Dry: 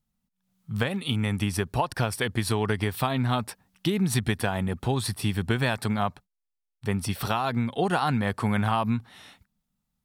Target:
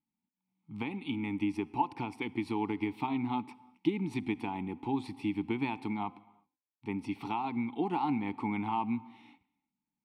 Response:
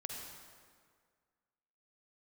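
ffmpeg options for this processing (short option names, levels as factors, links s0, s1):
-filter_complex "[0:a]asplit=3[s0][s1][s2];[s0]bandpass=f=300:t=q:w=8,volume=1[s3];[s1]bandpass=f=870:t=q:w=8,volume=0.501[s4];[s2]bandpass=f=2240:t=q:w=8,volume=0.355[s5];[s3][s4][s5]amix=inputs=3:normalize=0,bandreject=f=256.6:t=h:w=4,bandreject=f=513.2:t=h:w=4,bandreject=f=769.8:t=h:w=4,bandreject=f=1026.4:t=h:w=4,bandreject=f=1283:t=h:w=4,asplit=2[s6][s7];[1:a]atrim=start_sample=2205,afade=t=out:st=0.43:d=0.01,atrim=end_sample=19404[s8];[s7][s8]afir=irnorm=-1:irlink=0,volume=0.158[s9];[s6][s9]amix=inputs=2:normalize=0,volume=1.88"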